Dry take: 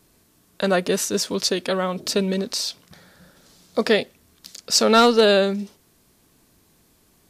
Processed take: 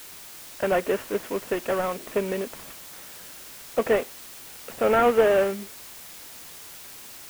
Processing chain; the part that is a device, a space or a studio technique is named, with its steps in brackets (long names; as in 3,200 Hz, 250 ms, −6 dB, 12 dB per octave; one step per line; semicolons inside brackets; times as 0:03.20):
army field radio (band-pass filter 330–2,900 Hz; variable-slope delta modulation 16 kbit/s; white noise bed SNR 16 dB)